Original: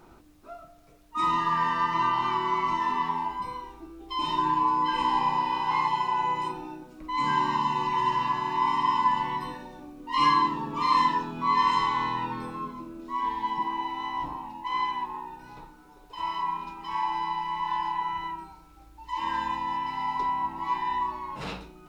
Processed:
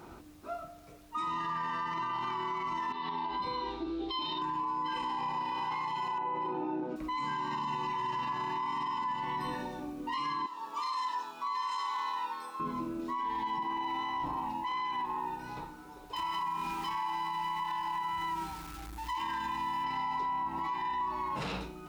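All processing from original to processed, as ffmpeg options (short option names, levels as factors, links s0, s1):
-filter_complex "[0:a]asettb=1/sr,asplit=3[s0][s1][s2];[s0]atrim=end=2.924[s3];[s1]atrim=start=2.92:end=4.42,asetpts=PTS-STARTPTS,afade=t=in:d=0.004:c=qsin,afade=t=out:st=1.496:d=0.004:c=qsin,equalizer=f=410:w=0.83:g=6.5,acompressor=threshold=0.0178:ratio=10:attack=3.2:release=140:knee=1:detection=peak,lowpass=f=3900:t=q:w=5.5[s4];[s2]atrim=start=4.416[s5];[s3][s4]acrossfade=d=0.004:c1=hsin:c2=qsin[s6];[s6][s5]acrossfade=d=0.004:c1=qsin:c2=hsin,asettb=1/sr,asplit=3[s7][s8][s9];[s7]atrim=end=6.184[s10];[s8]atrim=start=6.18:end=6.96,asetpts=PTS-STARTPTS,afade=t=in:d=0.004:c=qsin,afade=t=out:st=0.776:d=0.004:c=qsin,highpass=100,lowpass=3300,equalizer=f=460:w=0.52:g=11.5[s11];[s9]atrim=start=6.956[s12];[s10][s11]acrossfade=d=0.004:c1=hsin:c2=qsin[s13];[s13][s12]acrossfade=d=0.004:c1=qsin:c2=hsin,asettb=1/sr,asplit=3[s14][s15][s16];[s14]atrim=end=10.464[s17];[s15]atrim=start=10.46:end=12.6,asetpts=PTS-STARTPTS,afade=t=in:d=0.004:c=qsin,afade=t=out:st=2.136:d=0.004:c=qsin,highpass=1100,equalizer=f=2200:t=o:w=1.5:g=-10.5[s18];[s16]atrim=start=12.596[s19];[s17][s18]acrossfade=d=0.004:c1=hsin:c2=qsin[s20];[s20][s19]acrossfade=d=0.004:c1=qsin:c2=hsin,asettb=1/sr,asplit=3[s21][s22][s23];[s21]atrim=end=16.164[s24];[s22]atrim=start=16.16:end=19.84,asetpts=PTS-STARTPTS,afade=t=in:d=0.004:c=qsin,afade=t=out:st=3.676:d=0.004:c=qsin,aeval=exprs='val(0)+0.5*0.00596*sgn(val(0))':c=same,equalizer=f=550:t=o:w=0.69:g=-8.5,acompressor=threshold=0.0178:ratio=4:attack=3.2:release=140:knee=1:detection=peak[s25];[s23]atrim=start=19.836[s26];[s24][s25]acrossfade=d=0.004:c1=hsin:c2=qsin[s27];[s27][s26]acrossfade=d=0.004:c1=qsin:c2=hsin,highpass=45,acompressor=threshold=0.0251:ratio=6,alimiter=level_in=2.37:limit=0.0631:level=0:latency=1:release=12,volume=0.422,volume=1.58"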